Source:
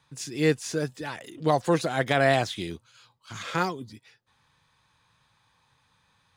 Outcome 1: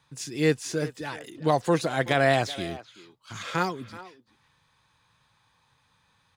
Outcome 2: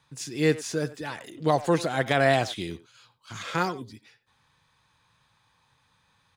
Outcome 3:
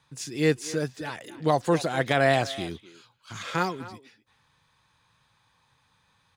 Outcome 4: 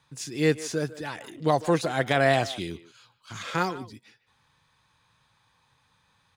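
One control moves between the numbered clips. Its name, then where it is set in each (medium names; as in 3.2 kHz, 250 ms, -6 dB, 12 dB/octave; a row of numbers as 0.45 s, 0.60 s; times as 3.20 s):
speakerphone echo, time: 380 ms, 90 ms, 250 ms, 150 ms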